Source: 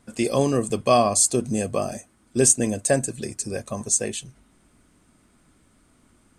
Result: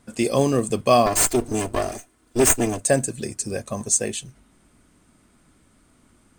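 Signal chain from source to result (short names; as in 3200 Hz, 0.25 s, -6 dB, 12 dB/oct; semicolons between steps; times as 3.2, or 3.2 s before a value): 1.06–2.8 minimum comb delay 2.9 ms; in parallel at -8 dB: short-mantissa float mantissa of 2-bit; on the sum: gain -1.5 dB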